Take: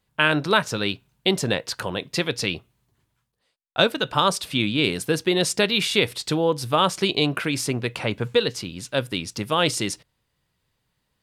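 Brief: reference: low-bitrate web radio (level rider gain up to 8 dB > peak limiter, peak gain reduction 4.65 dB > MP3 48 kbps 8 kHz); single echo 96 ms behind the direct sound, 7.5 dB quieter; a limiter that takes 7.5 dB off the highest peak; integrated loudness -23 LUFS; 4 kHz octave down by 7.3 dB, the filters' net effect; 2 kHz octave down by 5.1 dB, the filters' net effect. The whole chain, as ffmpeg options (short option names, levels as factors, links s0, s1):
-af "equalizer=f=2000:t=o:g=-5,equalizer=f=4000:t=o:g=-7.5,alimiter=limit=0.2:level=0:latency=1,aecho=1:1:96:0.422,dynaudnorm=m=2.51,alimiter=limit=0.141:level=0:latency=1,volume=2.11" -ar 8000 -c:a libmp3lame -b:a 48k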